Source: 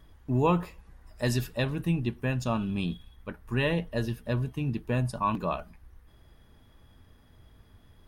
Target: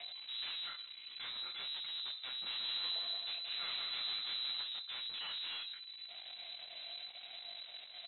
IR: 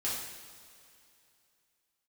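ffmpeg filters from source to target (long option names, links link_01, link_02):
-filter_complex "[0:a]lowshelf=frequency=130:gain=-7,aecho=1:1:5.8:0.76,acompressor=mode=upward:threshold=-48dB:ratio=2.5,alimiter=level_in=6dB:limit=-24dB:level=0:latency=1:release=193,volume=-6dB,aeval=exprs='0.0168*(abs(mod(val(0)/0.0168+3,4)-2)-1)':channel_layout=same,flanger=delay=18.5:depth=5.4:speed=1,aeval=exprs='(tanh(562*val(0)+0.65)-tanh(0.65))/562':channel_layout=same,asettb=1/sr,asplit=3[link_01][link_02][link_03];[link_01]atrim=end=2.284[link_04];[link_02]atrim=start=2.28:end=4.6,asetpts=PTS-STARTPTS,afade=type=in:duration=0.004:curve=qsin,afade=type=out:start_time=2.316:duration=0.004:curve=qsin,aecho=1:1:180|315|416.2|492.2|549.1:0.631|0.398|0.251|0.158|0.1,atrim=end_sample=102312[link_05];[link_03]atrim=start=4.596[link_06];[link_04][link_05]acrossfade=duration=0.004:curve1=hsin:curve2=qsin[link_07];[link_07][link_06]acrossfade=duration=0.004:curve1=qsin:curve2=hsin,lowpass=frequency=3400:width_type=q:width=0.5098,lowpass=frequency=3400:width_type=q:width=0.6013,lowpass=frequency=3400:width_type=q:width=0.9,lowpass=frequency=3400:width_type=q:width=2.563,afreqshift=-4000,volume=12.5dB"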